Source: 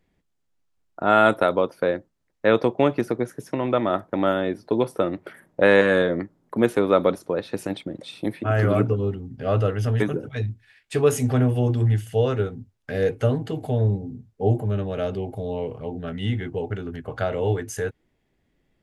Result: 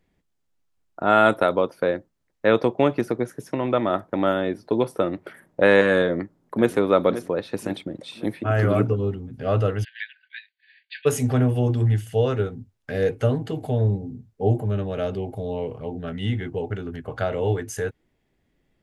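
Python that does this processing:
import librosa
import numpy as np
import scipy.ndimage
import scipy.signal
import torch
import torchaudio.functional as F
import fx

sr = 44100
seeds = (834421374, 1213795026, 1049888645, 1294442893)

y = fx.echo_throw(x, sr, start_s=6.05, length_s=0.7, ms=530, feedback_pct=50, wet_db=-12.5)
y = fx.brickwall_bandpass(y, sr, low_hz=1500.0, high_hz=4800.0, at=(9.83, 11.05), fade=0.02)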